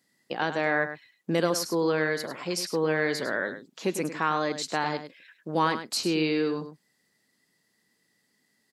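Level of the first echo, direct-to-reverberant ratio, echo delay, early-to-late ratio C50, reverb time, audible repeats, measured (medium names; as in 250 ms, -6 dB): -10.5 dB, no reverb, 102 ms, no reverb, no reverb, 1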